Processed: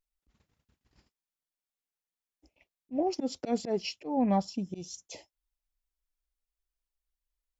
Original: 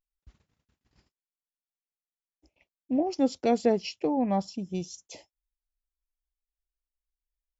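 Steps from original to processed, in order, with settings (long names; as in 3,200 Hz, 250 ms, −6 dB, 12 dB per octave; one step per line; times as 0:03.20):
volume swells 134 ms
phase shifter 1.4 Hz, delay 4.5 ms, feedback 23%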